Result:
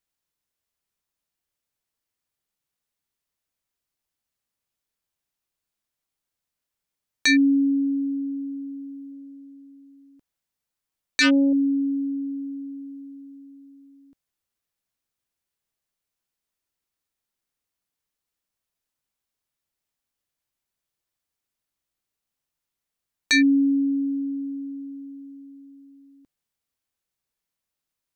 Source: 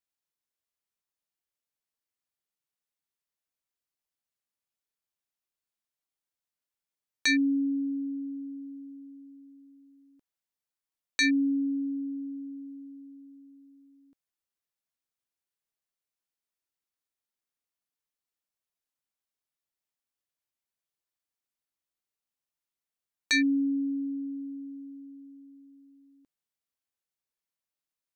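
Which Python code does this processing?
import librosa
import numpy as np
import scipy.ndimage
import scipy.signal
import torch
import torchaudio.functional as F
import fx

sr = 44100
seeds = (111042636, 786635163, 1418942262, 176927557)

y = fx.median_filter(x, sr, points=9, at=(24.12, 25.01))
y = fx.low_shelf(y, sr, hz=170.0, db=7.0)
y = fx.doppler_dist(y, sr, depth_ms=0.24, at=(9.11, 11.53))
y = y * librosa.db_to_amplitude(5.5)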